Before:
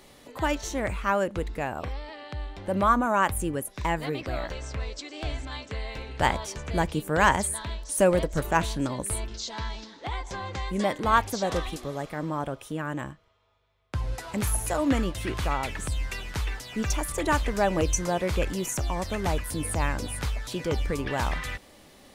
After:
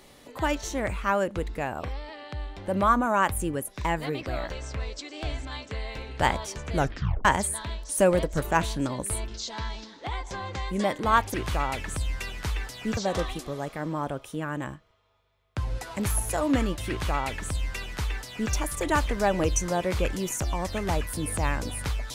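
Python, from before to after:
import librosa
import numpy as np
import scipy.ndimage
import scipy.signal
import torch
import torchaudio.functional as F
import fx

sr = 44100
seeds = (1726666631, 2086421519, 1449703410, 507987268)

y = fx.edit(x, sr, fx.tape_stop(start_s=6.75, length_s=0.5),
    fx.duplicate(start_s=15.25, length_s=1.63, to_s=11.34), tone=tone)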